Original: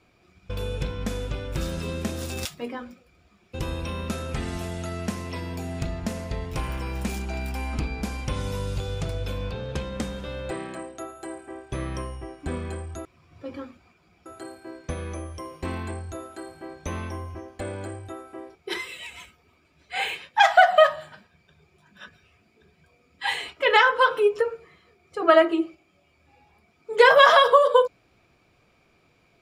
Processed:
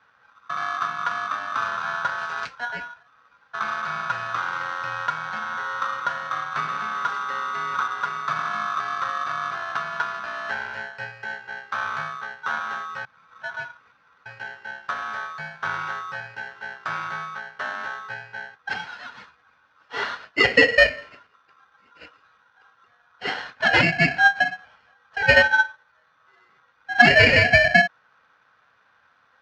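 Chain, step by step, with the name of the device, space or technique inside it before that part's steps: ring modulator pedal into a guitar cabinet (polarity switched at an audio rate 1.2 kHz; cabinet simulation 94–4300 Hz, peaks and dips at 130 Hz +3 dB, 350 Hz -8 dB, 1.5 kHz +9 dB, 3.6 kHz -9 dB)

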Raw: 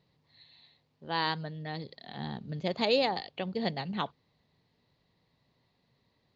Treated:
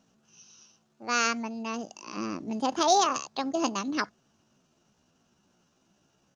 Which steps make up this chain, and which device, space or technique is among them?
1.28–2.90 s: dynamic bell 5.2 kHz, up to -5 dB, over -52 dBFS, Q 1.1; chipmunk voice (pitch shift +6.5 st); trim +4.5 dB

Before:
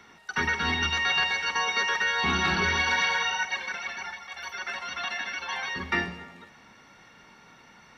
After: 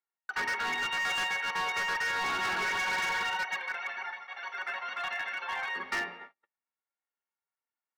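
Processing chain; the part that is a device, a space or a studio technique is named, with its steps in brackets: walkie-talkie (band-pass 510–2400 Hz; hard clipper -28 dBFS, distortion -10 dB; gate -45 dBFS, range -43 dB)

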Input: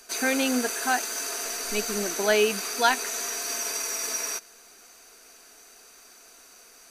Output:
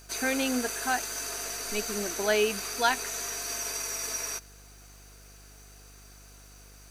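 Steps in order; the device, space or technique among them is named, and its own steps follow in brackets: video cassette with head-switching buzz (mains buzz 50 Hz, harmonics 33, -50 dBFS -8 dB/octave; white noise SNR 36 dB); trim -3.5 dB

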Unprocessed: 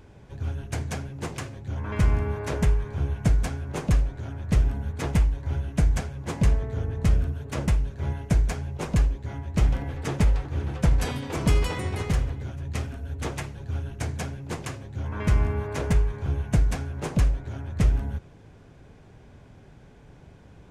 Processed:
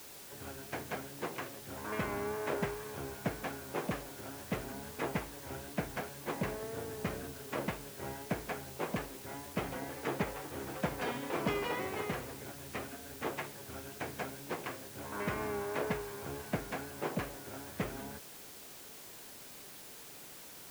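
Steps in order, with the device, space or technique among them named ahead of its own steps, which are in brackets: wax cylinder (band-pass 300–2700 Hz; wow and flutter; white noise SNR 11 dB); trim -2.5 dB

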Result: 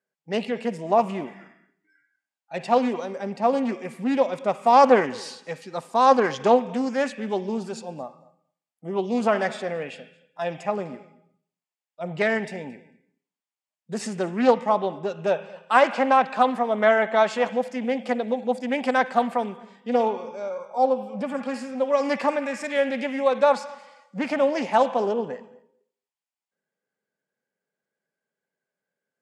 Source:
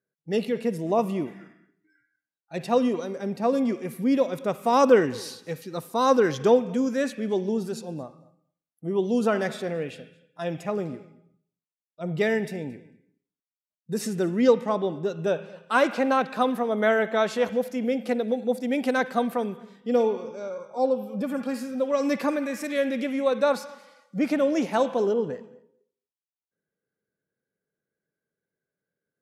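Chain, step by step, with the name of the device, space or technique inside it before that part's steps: full-range speaker at full volume (loudspeaker Doppler distortion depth 0.22 ms; cabinet simulation 270–8000 Hz, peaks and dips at 320 Hz -10 dB, 450 Hz -6 dB, 840 Hz +4 dB, 1.4 kHz -4 dB, 3.9 kHz -6 dB, 5.9 kHz -6 dB); trim +5 dB

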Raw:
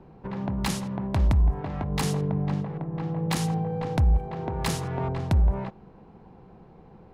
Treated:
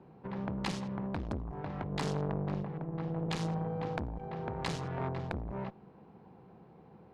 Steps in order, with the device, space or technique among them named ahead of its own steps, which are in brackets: valve radio (band-pass 100–5200 Hz; valve stage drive 18 dB, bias 0.8; transformer saturation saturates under 700 Hz)

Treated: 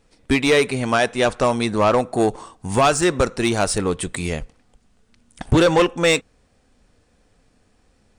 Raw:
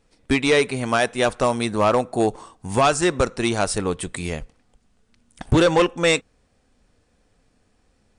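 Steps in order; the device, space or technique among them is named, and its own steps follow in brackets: parallel distortion (in parallel at -6.5 dB: hard clipper -22.5 dBFS, distortion -6 dB); 0.75–1.99 s: on the sum: low-pass 9 kHz 12 dB/octave

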